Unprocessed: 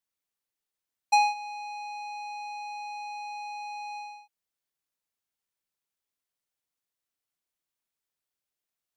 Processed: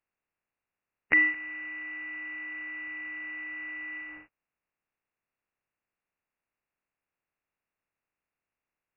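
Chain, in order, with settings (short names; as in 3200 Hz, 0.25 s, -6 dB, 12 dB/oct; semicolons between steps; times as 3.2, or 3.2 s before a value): spectral contrast lowered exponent 0.33; treble ducked by the level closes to 1200 Hz, closed at -36 dBFS; inverted band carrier 2800 Hz; gain +5.5 dB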